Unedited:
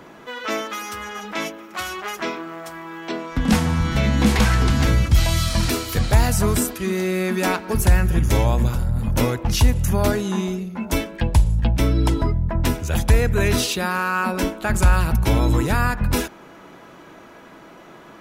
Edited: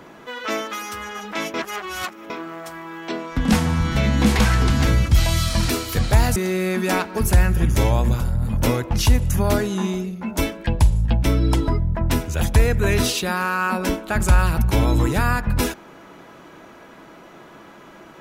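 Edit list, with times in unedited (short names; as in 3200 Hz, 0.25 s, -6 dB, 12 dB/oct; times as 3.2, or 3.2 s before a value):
1.54–2.3 reverse
6.36–6.9 cut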